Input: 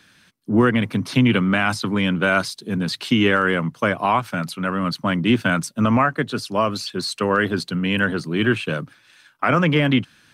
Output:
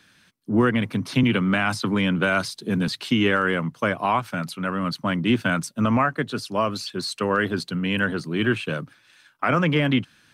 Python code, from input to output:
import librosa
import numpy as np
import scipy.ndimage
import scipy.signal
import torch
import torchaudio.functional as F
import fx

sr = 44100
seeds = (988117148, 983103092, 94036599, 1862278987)

y = fx.band_squash(x, sr, depth_pct=70, at=(1.23, 2.88))
y = F.gain(torch.from_numpy(y), -3.0).numpy()